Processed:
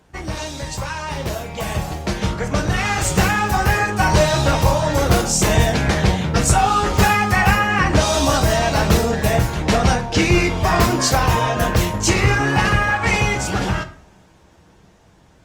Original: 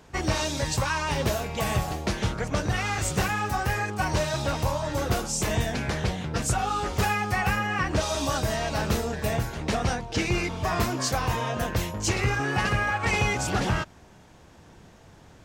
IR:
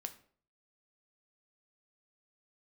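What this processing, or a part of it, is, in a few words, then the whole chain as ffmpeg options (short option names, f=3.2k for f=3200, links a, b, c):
speakerphone in a meeting room: -filter_complex "[1:a]atrim=start_sample=2205[a];[0:a][a]afir=irnorm=-1:irlink=0,dynaudnorm=f=240:g=21:m=12dB,volume=2dB" -ar 48000 -c:a libopus -b:a 32k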